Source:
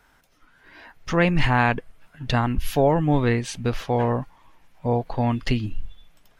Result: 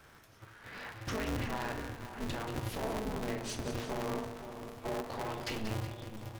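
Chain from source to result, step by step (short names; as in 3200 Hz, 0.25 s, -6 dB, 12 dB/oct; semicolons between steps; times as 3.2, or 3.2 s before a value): 4.15–5.56 tone controls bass -14 dB, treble +5 dB; compressor 5:1, threshold -34 dBFS, peak gain reduction 18 dB; soft clip -32.5 dBFS, distortion -12 dB; split-band echo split 900 Hz, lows 0.512 s, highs 0.185 s, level -9.5 dB; reverb RT60 0.80 s, pre-delay 3 ms, DRR 2.5 dB; polarity switched at an audio rate 110 Hz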